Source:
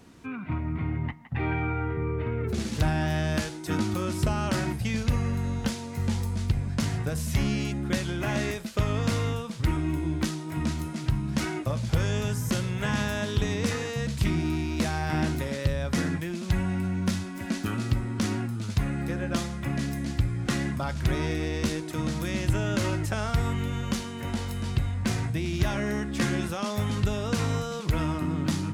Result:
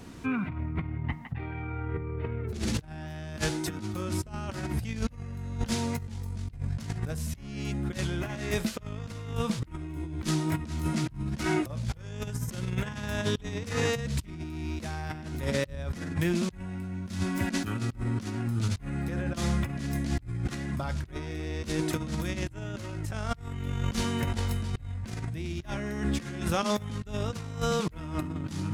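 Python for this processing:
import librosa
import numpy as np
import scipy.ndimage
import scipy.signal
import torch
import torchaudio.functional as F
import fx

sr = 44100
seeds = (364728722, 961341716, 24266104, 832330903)

y = fx.low_shelf(x, sr, hz=97.0, db=5.5)
y = fx.over_compress(y, sr, threshold_db=-31.0, ratio=-0.5)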